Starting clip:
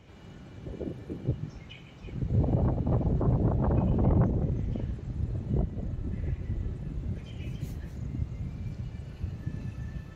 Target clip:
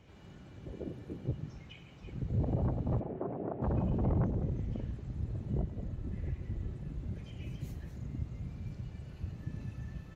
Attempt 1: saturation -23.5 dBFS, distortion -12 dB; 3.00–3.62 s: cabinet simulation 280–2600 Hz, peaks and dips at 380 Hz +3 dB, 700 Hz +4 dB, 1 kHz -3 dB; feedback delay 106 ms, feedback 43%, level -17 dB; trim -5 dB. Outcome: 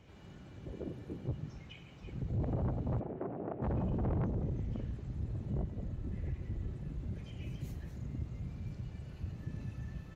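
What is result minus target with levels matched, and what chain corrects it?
saturation: distortion +11 dB
saturation -15 dBFS, distortion -24 dB; 3.00–3.62 s: cabinet simulation 280–2600 Hz, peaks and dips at 380 Hz +3 dB, 700 Hz +4 dB, 1 kHz -3 dB; feedback delay 106 ms, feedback 43%, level -17 dB; trim -5 dB

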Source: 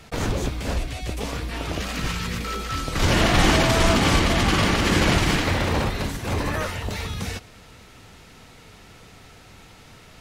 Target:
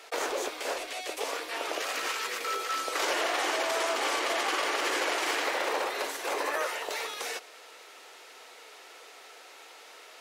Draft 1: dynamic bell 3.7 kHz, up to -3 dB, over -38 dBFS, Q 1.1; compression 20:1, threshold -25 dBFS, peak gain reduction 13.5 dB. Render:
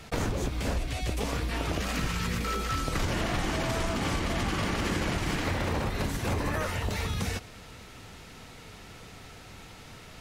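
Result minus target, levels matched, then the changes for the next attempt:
250 Hz band +11.0 dB
add after dynamic bell: inverse Chebyshev high-pass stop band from 200 Hz, stop band 40 dB

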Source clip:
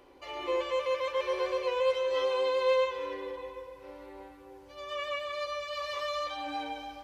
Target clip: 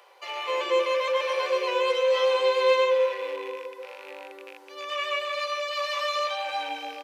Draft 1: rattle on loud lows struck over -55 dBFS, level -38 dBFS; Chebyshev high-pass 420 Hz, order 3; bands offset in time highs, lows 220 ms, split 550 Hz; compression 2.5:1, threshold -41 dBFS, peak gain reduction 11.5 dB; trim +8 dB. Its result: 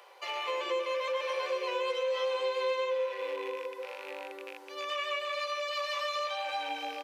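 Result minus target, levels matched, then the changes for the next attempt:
compression: peak gain reduction +11.5 dB
remove: compression 2.5:1, threshold -41 dBFS, peak gain reduction 11.5 dB

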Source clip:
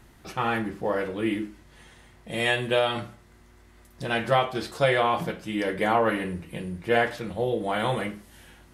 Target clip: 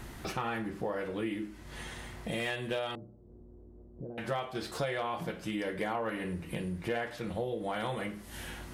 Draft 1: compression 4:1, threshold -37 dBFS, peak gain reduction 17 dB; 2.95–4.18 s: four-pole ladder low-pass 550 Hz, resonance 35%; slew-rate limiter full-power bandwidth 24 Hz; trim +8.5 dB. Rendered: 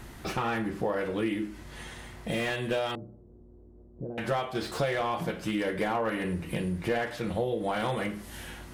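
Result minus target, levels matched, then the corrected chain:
compression: peak gain reduction -5.5 dB
compression 4:1, threshold -44 dBFS, peak gain reduction 22 dB; 2.95–4.18 s: four-pole ladder low-pass 550 Hz, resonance 35%; slew-rate limiter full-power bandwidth 24 Hz; trim +8.5 dB

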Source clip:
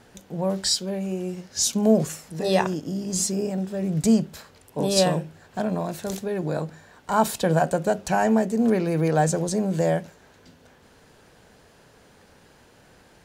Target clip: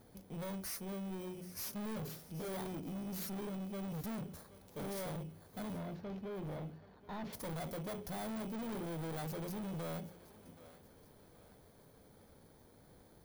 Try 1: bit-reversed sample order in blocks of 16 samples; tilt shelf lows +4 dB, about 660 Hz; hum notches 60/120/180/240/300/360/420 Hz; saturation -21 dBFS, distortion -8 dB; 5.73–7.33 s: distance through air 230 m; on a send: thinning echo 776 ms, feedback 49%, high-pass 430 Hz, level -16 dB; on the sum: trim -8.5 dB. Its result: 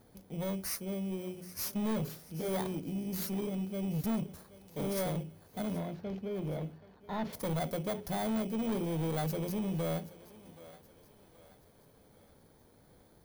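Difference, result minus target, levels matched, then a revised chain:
saturation: distortion -5 dB
bit-reversed sample order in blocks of 16 samples; tilt shelf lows +4 dB, about 660 Hz; hum notches 60/120/180/240/300/360/420 Hz; saturation -31.5 dBFS, distortion -3 dB; 5.73–7.33 s: distance through air 230 m; on a send: thinning echo 776 ms, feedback 49%, high-pass 430 Hz, level -16 dB; on the sum: trim -8.5 dB

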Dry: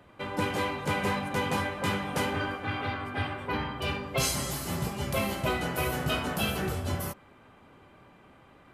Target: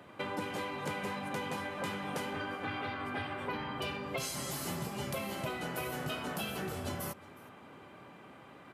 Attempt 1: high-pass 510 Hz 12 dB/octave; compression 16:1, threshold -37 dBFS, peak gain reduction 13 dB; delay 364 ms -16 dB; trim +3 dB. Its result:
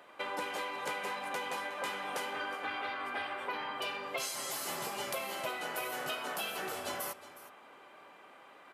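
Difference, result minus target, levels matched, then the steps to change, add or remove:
125 Hz band -16.5 dB; echo-to-direct +7 dB
change: high-pass 130 Hz 12 dB/octave; change: delay 364 ms -23 dB

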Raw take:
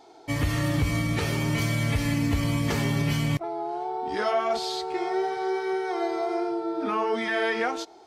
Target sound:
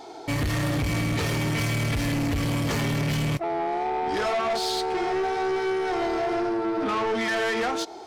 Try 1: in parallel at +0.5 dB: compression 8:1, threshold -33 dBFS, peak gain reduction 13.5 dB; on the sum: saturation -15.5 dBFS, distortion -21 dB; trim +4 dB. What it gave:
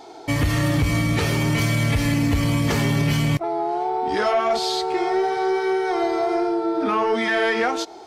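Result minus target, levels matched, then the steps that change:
saturation: distortion -12 dB
change: saturation -26.5 dBFS, distortion -9 dB

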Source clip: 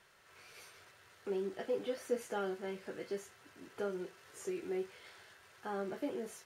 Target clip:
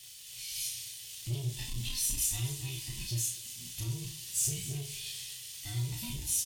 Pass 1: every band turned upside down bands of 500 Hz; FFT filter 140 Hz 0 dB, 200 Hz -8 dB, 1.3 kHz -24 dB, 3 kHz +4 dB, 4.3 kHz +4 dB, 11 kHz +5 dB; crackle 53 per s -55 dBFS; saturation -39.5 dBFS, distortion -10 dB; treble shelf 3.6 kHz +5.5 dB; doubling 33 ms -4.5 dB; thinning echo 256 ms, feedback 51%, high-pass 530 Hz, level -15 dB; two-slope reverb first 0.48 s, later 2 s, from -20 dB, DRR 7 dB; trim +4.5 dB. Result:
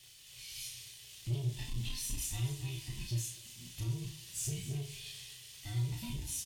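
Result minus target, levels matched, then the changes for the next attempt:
8 kHz band -3.5 dB
change: treble shelf 3.6 kHz +16 dB

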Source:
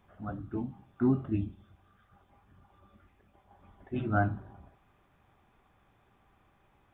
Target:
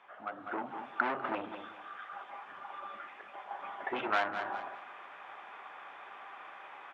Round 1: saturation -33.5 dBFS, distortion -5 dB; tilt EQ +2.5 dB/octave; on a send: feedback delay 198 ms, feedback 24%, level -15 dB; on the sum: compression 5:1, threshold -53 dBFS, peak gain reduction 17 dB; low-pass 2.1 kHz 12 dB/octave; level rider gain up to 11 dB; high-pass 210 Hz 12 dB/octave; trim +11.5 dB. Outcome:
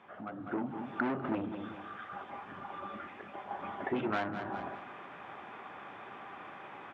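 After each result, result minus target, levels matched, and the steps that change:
250 Hz band +9.0 dB; compression: peak gain reduction +5.5 dB
change: high-pass 670 Hz 12 dB/octave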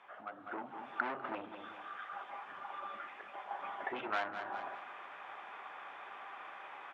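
compression: peak gain reduction +5.5 dB
change: compression 5:1, threshold -46 dBFS, peak gain reduction 11 dB

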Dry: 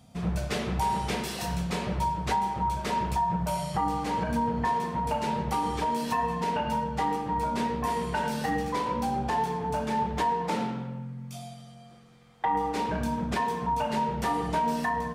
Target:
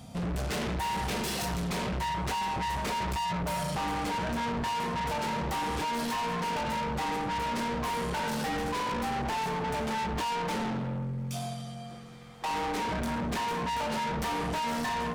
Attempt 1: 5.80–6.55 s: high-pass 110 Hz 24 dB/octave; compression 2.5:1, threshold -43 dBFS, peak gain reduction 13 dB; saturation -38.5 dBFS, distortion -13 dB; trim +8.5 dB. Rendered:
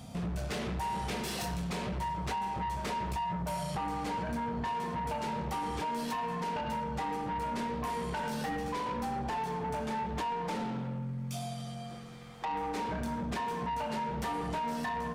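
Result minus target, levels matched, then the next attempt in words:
compression: peak gain reduction +13 dB
5.80–6.55 s: high-pass 110 Hz 24 dB/octave; saturation -38.5 dBFS, distortion -5 dB; trim +8.5 dB

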